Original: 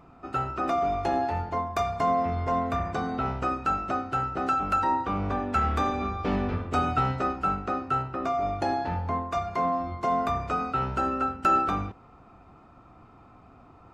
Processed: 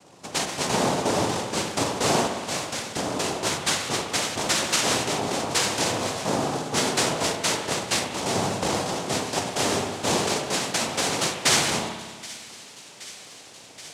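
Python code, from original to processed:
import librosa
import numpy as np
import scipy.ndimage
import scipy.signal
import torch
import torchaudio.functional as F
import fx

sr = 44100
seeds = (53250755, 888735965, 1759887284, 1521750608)

y = fx.highpass(x, sr, hz=930.0, slope=12, at=(2.27, 2.96))
y = fx.noise_vocoder(y, sr, seeds[0], bands=2)
y = fx.echo_wet_highpass(y, sr, ms=775, feedback_pct=79, hz=1900.0, wet_db=-18)
y = fx.rev_spring(y, sr, rt60_s=1.6, pass_ms=(58,), chirp_ms=40, drr_db=6.0)
y = F.gain(torch.from_numpy(y), 1.5).numpy()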